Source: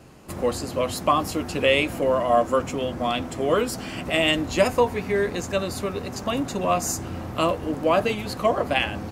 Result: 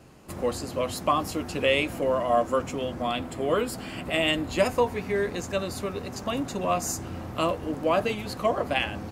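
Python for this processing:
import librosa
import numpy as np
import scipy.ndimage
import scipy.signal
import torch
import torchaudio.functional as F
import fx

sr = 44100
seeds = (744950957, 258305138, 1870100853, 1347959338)

y = fx.peak_eq(x, sr, hz=5900.0, db=-8.5, octaves=0.26, at=(3.02, 4.59))
y = F.gain(torch.from_numpy(y), -3.5).numpy()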